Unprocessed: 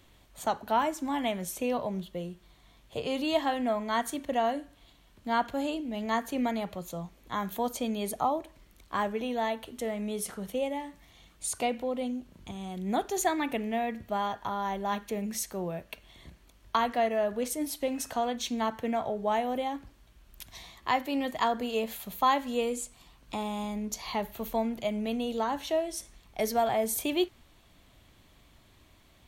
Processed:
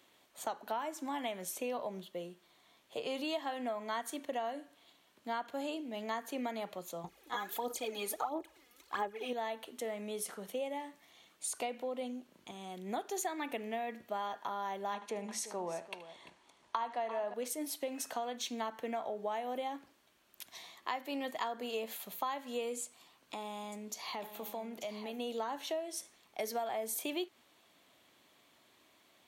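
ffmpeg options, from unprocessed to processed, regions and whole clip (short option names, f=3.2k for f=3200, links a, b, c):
-filter_complex "[0:a]asettb=1/sr,asplit=3[a][b][c];[a]atrim=end=7.044[d];[b]atrim=start=7.04:end=9.33,asetpts=PTS-STARTPTS,afade=t=in:d=0.004:c=qsin,afade=t=out:st=2.286:d=0.004:c=qsin,equalizer=f=60:t=o:w=0.4:g=13,aecho=1:1:2.4:0.42,atrim=end_sample=100989,aphaser=in_gain=1:out_gain=1:delay=4.2:decay=0.71:speed=1.5:type=sinusoidal[e];[c]atrim=start=9.326[f];[d][e]acrossfade=d=0.004:c1=hsin:c2=qsin[g];[g][f]acrossfade=d=0.004:c1=qsin:c2=hsin,asettb=1/sr,asplit=3[h][i][j];[h]atrim=end=14.944[k];[i]atrim=start=14.94:end=17.34,asetpts=PTS-STARTPTS,afade=t=in:d=0.004:c=qsin,afade=t=out:st=2.396:d=0.004:c=qsin,lowpass=f=9.8k:w=0.5412,lowpass=f=9.8k:w=1.3066,equalizer=f=920:w=2.5:g=9,aecho=1:1:76|344:0.158|0.188,atrim=end_sample=105840[l];[j]atrim=start=17.336[m];[k][l]acrossfade=d=0.004:c1=hsin:c2=qsin[n];[n][m]acrossfade=d=0.004:c1=qsin:c2=hsin,asettb=1/sr,asplit=3[o][p][q];[o]atrim=end=22.834[r];[p]atrim=start=22.83:end=25.19,asetpts=PTS-STARTPTS,afade=t=in:d=0.004:c=qsin,afade=t=out:st=2.356:d=0.004:c=qsin,acompressor=threshold=-33dB:ratio=4:attack=3.2:release=140:knee=1:detection=peak,aecho=1:1:890:0.299,atrim=end_sample=104076[s];[q]atrim=start=25.186[t];[r][s]acrossfade=d=0.004:c1=hsin:c2=qsin[u];[u][t]acrossfade=d=0.004:c1=qsin:c2=hsin,highpass=310,acompressor=threshold=-31dB:ratio=5,volume=-3dB"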